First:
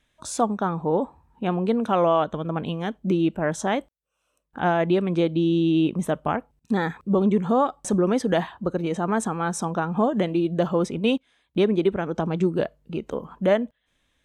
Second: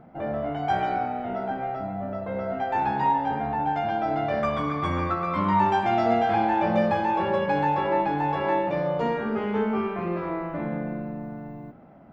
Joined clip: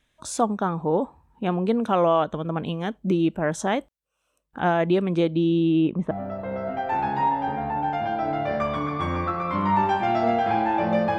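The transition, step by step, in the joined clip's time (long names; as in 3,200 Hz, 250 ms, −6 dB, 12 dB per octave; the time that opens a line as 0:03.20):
first
0:05.27–0:06.11: low-pass filter 6,200 Hz → 1,600 Hz
0:06.11: continue with second from 0:01.94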